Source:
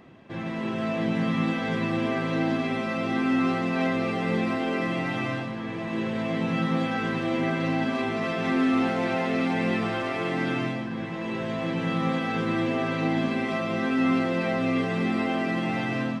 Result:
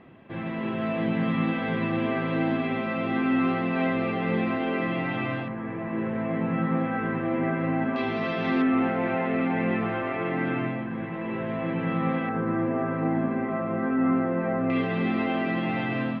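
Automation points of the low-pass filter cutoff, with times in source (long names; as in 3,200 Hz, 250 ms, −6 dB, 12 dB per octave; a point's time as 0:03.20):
low-pass filter 24 dB per octave
3,200 Hz
from 0:05.48 2,100 Hz
from 0:07.96 4,300 Hz
from 0:08.62 2,500 Hz
from 0:12.29 1,700 Hz
from 0:14.70 3,500 Hz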